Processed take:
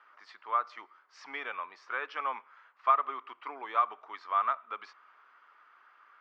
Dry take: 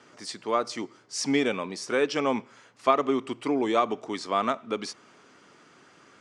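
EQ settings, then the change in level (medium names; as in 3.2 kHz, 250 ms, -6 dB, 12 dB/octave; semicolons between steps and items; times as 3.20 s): ladder band-pass 1.4 kHz, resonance 45%; distance through air 130 m; +7.0 dB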